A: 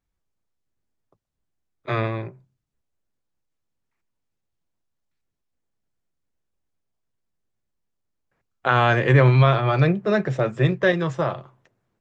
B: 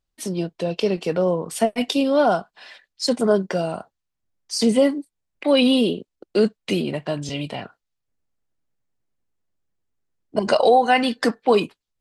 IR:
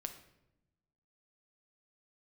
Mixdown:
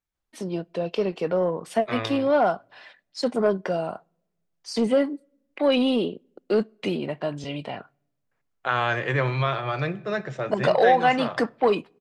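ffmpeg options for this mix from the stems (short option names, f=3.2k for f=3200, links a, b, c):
-filter_complex "[0:a]volume=-7dB,asplit=2[a][b];[b]volume=-3dB[c];[1:a]lowpass=f=1.3k:p=1,acontrast=64,adelay=150,volume=-4.5dB,asplit=2[d][e];[e]volume=-22.5dB[f];[2:a]atrim=start_sample=2205[g];[c][f]amix=inputs=2:normalize=0[h];[h][g]afir=irnorm=-1:irlink=0[i];[a][d][i]amix=inputs=3:normalize=0,lowshelf=f=460:g=-8.5"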